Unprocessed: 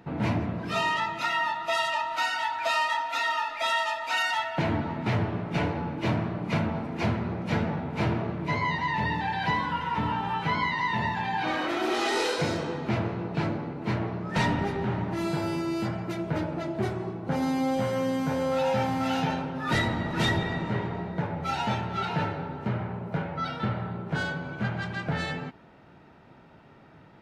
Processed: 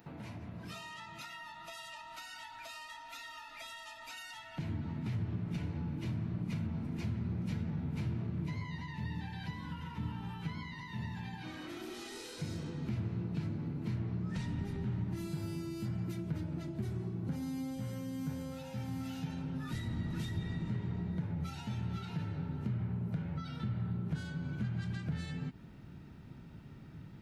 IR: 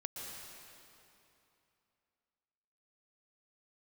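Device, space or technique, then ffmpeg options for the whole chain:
serial compression, leveller first: -filter_complex "[0:a]aemphasis=mode=production:type=75kf,acompressor=threshold=-27dB:ratio=2.5,acompressor=threshold=-38dB:ratio=4,asettb=1/sr,asplit=3[link_01][link_02][link_03];[link_01]atrim=end=13.994[link_04];[link_02]atrim=start=13.99:end=14.48,asetpts=PTS-STARTPTS,afade=type=in:duration=0.004:curve=qsin,afade=type=out:start_time=0.486:duration=0.004:curve=qsin,lowpass=9000[link_05];[link_03]atrim=start=14.476[link_06];[link_04][link_05]acrossfade=duration=0.004:curve1=hsin:curve2=qsin[link_07];[link_07][link_06]acrossfade=duration=0.004:curve1=qsin:curve2=hsin,asubboost=boost=7:cutoff=230,volume=-8dB"

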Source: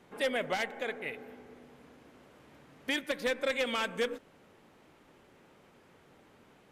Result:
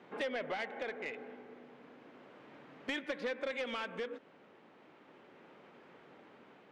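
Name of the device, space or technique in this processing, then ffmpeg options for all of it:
AM radio: -af "highpass=200,lowpass=3200,acompressor=threshold=-36dB:ratio=4,asoftclip=type=tanh:threshold=-32dB,tremolo=f=0.34:d=0.3,volume=3.5dB"

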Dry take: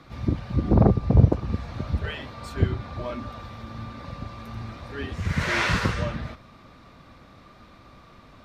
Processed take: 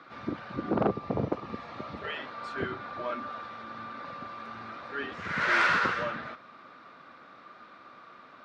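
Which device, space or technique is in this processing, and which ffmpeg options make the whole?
intercom: -filter_complex "[0:a]asettb=1/sr,asplit=3[link_01][link_02][link_03];[link_01]atrim=end=0.904[link_04];[link_02]atrim=start=0.9:end=2.16,asetpts=PTS-STARTPTS,afade=type=in:duration=0.004:curve=qsin,afade=type=out:start_time=1.256:duration=0.004:curve=qsin,bandreject=frequency=1500:width=5[link_05];[link_03]atrim=start=2.156[link_06];[link_04][link_05]acrossfade=duration=0.004:curve1=hsin:curve2=qsin[link_07];[link_07][link_06]acrossfade=duration=0.004:curve1=qsin:curve2=hsin,highpass=300,lowpass=4200,equalizer=frequency=1400:width_type=o:width=0.57:gain=9,asoftclip=type=tanh:threshold=-14dB,volume=-2dB"

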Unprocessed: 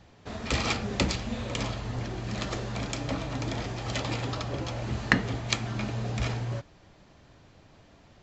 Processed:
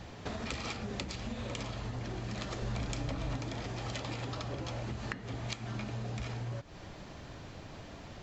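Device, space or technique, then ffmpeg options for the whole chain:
serial compression, peaks first: -filter_complex "[0:a]acompressor=threshold=-39dB:ratio=6,acompressor=threshold=-48dB:ratio=2,asettb=1/sr,asplit=3[link_01][link_02][link_03];[link_01]atrim=end=2.624[link_04];[link_02]atrim=start=2.62:end=3.37,asetpts=PTS-STARTPTS,afade=type=in:duration=0.004:curve=qsin,afade=type=out:start_time=0.746:duration=0.004:curve=qsin,lowshelf=frequency=80:gain=11.5[link_05];[link_03]atrim=start=3.366[link_06];[link_04][link_05]acrossfade=duration=0.004:curve1=hsin:curve2=qsin[link_07];[link_07][link_06]acrossfade=duration=0.004:curve1=qsin:curve2=hsin,volume=8.5dB"

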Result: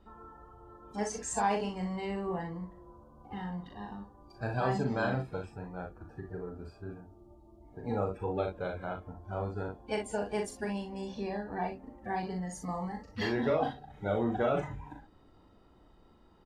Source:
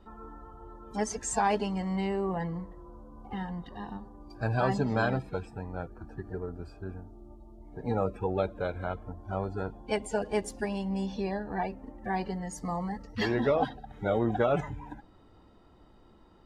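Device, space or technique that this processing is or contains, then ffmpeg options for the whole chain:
slapback doubling: -filter_complex "[0:a]asplit=3[link_01][link_02][link_03];[link_02]adelay=39,volume=-5dB[link_04];[link_03]adelay=60,volume=-9dB[link_05];[link_01][link_04][link_05]amix=inputs=3:normalize=0,volume=-4.5dB"

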